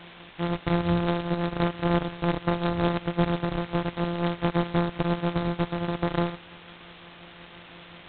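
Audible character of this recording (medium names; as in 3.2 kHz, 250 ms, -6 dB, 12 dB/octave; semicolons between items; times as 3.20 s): a buzz of ramps at a fixed pitch in blocks of 256 samples; tremolo triangle 5.7 Hz, depth 60%; a quantiser's noise floor 8-bit, dither triangular; G.726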